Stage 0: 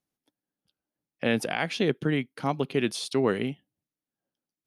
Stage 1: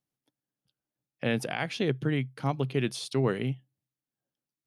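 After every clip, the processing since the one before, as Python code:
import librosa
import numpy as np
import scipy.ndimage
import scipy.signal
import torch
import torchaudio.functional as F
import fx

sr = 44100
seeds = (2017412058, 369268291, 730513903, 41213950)

y = fx.peak_eq(x, sr, hz=130.0, db=13.0, octaves=0.23)
y = y * 10.0 ** (-3.5 / 20.0)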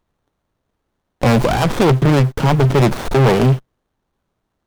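y = fx.dmg_noise_colour(x, sr, seeds[0], colour='pink', level_db=-68.0)
y = fx.leveller(y, sr, passes=5)
y = fx.running_max(y, sr, window=17)
y = y * 10.0 ** (7.0 / 20.0)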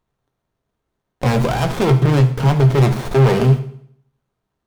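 y = fx.rev_fdn(x, sr, rt60_s=0.64, lf_ratio=1.1, hf_ratio=0.95, size_ms=44.0, drr_db=5.5)
y = y * 10.0 ** (-4.5 / 20.0)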